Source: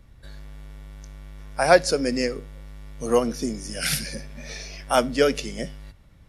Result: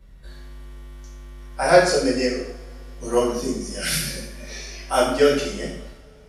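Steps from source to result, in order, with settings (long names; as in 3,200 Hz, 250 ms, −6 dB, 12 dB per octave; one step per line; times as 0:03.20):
coupled-rooms reverb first 0.67 s, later 3.5 s, from −27 dB, DRR −7 dB
level −6 dB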